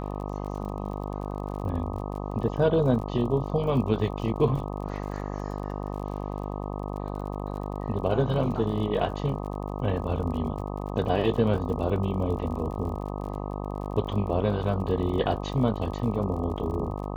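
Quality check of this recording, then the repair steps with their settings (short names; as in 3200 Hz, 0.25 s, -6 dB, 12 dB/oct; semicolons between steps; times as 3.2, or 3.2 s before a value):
buzz 50 Hz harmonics 25 -33 dBFS
crackle 46/s -37 dBFS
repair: de-click; de-hum 50 Hz, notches 25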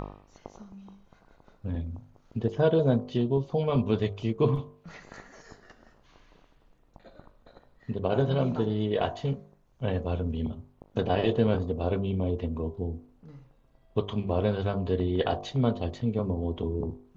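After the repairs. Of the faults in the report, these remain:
none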